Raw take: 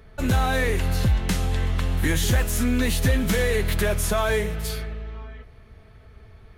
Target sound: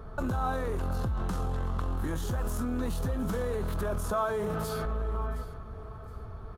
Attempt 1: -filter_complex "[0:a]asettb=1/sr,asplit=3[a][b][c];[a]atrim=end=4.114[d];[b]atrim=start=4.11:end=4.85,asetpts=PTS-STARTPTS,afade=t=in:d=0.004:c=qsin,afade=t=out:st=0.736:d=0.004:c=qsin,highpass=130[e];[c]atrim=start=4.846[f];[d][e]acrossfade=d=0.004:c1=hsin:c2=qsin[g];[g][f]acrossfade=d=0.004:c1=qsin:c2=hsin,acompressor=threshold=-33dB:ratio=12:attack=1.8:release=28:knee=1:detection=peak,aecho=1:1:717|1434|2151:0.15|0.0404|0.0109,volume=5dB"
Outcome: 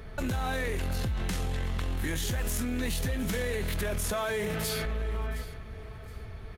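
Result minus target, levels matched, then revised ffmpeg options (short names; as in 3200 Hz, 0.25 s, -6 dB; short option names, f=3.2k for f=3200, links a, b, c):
4000 Hz band +10.0 dB
-filter_complex "[0:a]asettb=1/sr,asplit=3[a][b][c];[a]atrim=end=4.114[d];[b]atrim=start=4.11:end=4.85,asetpts=PTS-STARTPTS,afade=t=in:d=0.004:c=qsin,afade=t=out:st=0.736:d=0.004:c=qsin,highpass=130[e];[c]atrim=start=4.846[f];[d][e]acrossfade=d=0.004:c1=hsin:c2=qsin[g];[g][f]acrossfade=d=0.004:c1=qsin:c2=hsin,acompressor=threshold=-33dB:ratio=12:attack=1.8:release=28:knee=1:detection=peak,highshelf=f=1.6k:t=q:w=3:g=-8.5,aecho=1:1:717|1434|2151:0.15|0.0404|0.0109,volume=5dB"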